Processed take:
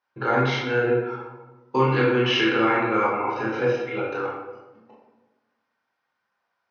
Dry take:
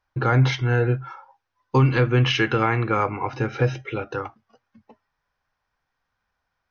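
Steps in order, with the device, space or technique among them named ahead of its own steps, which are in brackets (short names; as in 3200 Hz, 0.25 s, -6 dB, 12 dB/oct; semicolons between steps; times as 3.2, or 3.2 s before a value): supermarket ceiling speaker (BPF 280–5700 Hz; reverb RT60 1.1 s, pre-delay 17 ms, DRR -5 dB); gain -4.5 dB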